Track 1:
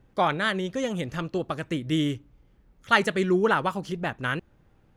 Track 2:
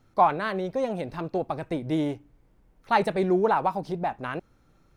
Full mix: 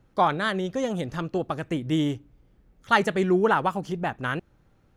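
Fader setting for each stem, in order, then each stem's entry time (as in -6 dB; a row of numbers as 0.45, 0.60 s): -2.0, -7.0 dB; 0.00, 0.00 s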